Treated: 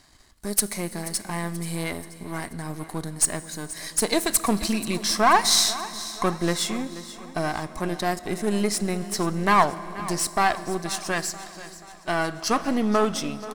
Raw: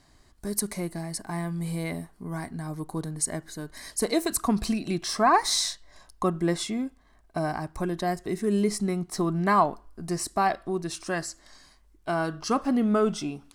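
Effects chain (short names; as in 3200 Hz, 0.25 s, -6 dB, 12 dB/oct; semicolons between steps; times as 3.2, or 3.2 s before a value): half-wave gain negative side -7 dB; tilt shelf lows -4 dB; feedback echo 0.482 s, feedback 52%, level -16 dB; reverb RT60 4.1 s, pre-delay 5 ms, DRR 15.5 dB; gain +5.5 dB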